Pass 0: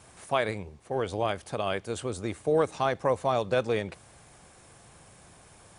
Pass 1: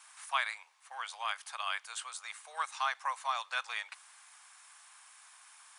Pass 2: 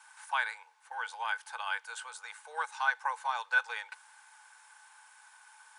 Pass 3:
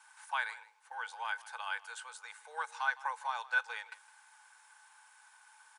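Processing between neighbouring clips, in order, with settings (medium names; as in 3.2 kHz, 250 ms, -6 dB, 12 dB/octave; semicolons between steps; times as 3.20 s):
steep high-pass 960 Hz 36 dB/octave
small resonant body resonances 470/860/1500 Hz, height 17 dB, ringing for 45 ms; trim -4 dB
delay 160 ms -19 dB; trim -3.5 dB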